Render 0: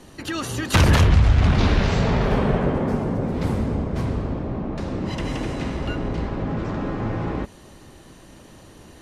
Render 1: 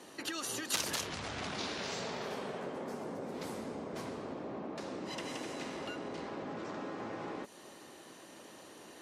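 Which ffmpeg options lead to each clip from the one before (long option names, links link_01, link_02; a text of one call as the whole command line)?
ffmpeg -i in.wav -filter_complex "[0:a]highpass=320,acrossover=split=4300[link_01][link_02];[link_01]acompressor=threshold=-35dB:ratio=6[link_03];[link_03][link_02]amix=inputs=2:normalize=0,volume=-3.5dB" out.wav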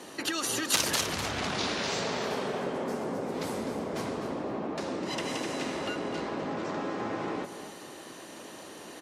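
ffmpeg -i in.wav -af "aecho=1:1:252|504:0.299|0.0508,volume=7.5dB" out.wav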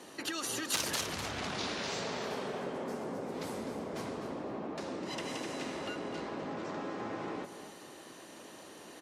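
ffmpeg -i in.wav -af "asoftclip=type=tanh:threshold=-14dB,volume=-5.5dB" out.wav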